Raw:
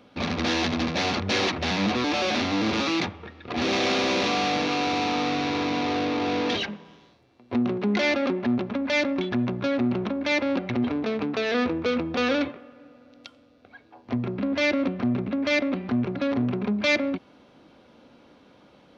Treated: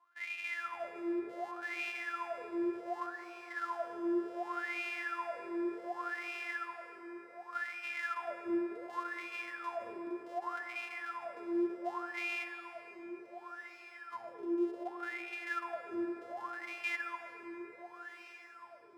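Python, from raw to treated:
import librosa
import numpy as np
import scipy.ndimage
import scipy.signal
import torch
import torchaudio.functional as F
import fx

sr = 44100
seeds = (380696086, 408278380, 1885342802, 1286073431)

p1 = np.r_[np.sort(x[:len(x) // 128 * 128].reshape(-1, 128), axis=1).ravel(), x[len(x) // 128 * 128:]]
p2 = fx.peak_eq(p1, sr, hz=71.0, db=6.5, octaves=1.3)
p3 = p2 + fx.echo_diffused(p2, sr, ms=1375, feedback_pct=66, wet_db=-10.5, dry=0)
p4 = fx.wah_lfo(p3, sr, hz=0.67, low_hz=340.0, high_hz=2500.0, q=20.0)
p5 = fx.tilt_eq(p4, sr, slope=3.0)
p6 = fx.rev_plate(p5, sr, seeds[0], rt60_s=3.7, hf_ratio=0.6, predelay_ms=0, drr_db=8.0)
y = F.gain(torch.from_numpy(p6), 1.0).numpy()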